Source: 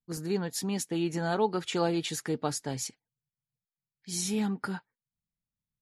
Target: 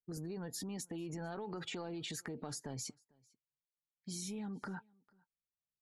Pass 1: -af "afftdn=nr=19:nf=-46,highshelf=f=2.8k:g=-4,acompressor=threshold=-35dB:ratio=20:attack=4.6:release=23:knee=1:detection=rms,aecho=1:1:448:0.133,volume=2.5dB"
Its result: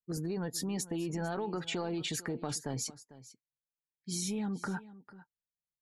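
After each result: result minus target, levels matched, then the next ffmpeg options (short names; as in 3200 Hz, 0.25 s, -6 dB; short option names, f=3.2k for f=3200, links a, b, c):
compressor: peak gain reduction -7.5 dB; echo-to-direct +11 dB
-af "afftdn=nr=19:nf=-46,highshelf=f=2.8k:g=-4,acompressor=threshold=-43dB:ratio=20:attack=4.6:release=23:knee=1:detection=rms,aecho=1:1:448:0.133,volume=2.5dB"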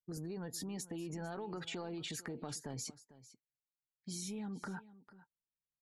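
echo-to-direct +11 dB
-af "afftdn=nr=19:nf=-46,highshelf=f=2.8k:g=-4,acompressor=threshold=-43dB:ratio=20:attack=4.6:release=23:knee=1:detection=rms,aecho=1:1:448:0.0376,volume=2.5dB"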